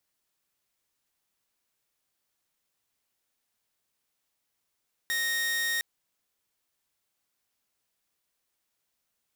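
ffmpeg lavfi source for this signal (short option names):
-f lavfi -i "aevalsrc='0.0631*(2*mod(1860*t,1)-1)':d=0.71:s=44100"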